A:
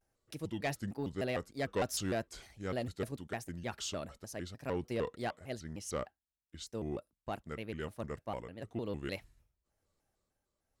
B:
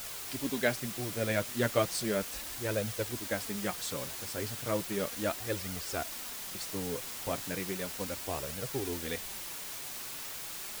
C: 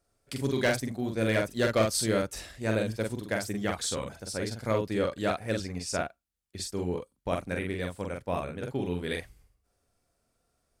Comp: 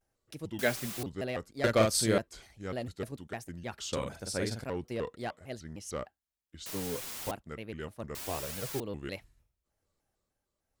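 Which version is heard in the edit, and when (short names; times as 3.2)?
A
0.59–1.03 from B
1.64–2.18 from C
3.93–4.64 from C
6.66–7.31 from B
8.15–8.8 from B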